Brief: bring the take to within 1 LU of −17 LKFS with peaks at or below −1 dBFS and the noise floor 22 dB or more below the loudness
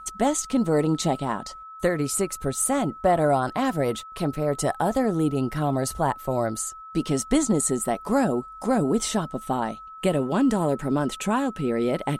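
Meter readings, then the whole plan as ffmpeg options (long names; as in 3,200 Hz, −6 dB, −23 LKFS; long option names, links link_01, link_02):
interfering tone 1,300 Hz; level of the tone −39 dBFS; integrated loudness −25.0 LKFS; sample peak −9.5 dBFS; target loudness −17.0 LKFS
→ -af "bandreject=frequency=1300:width=30"
-af "volume=8dB"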